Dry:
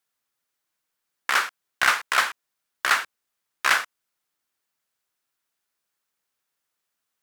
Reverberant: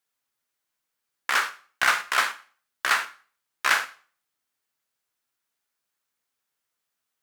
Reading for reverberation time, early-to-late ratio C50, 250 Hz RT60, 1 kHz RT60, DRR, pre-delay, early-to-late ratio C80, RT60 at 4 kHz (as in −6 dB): 0.45 s, 15.0 dB, 0.40 s, 0.45 s, 7.5 dB, 4 ms, 20.0 dB, 0.40 s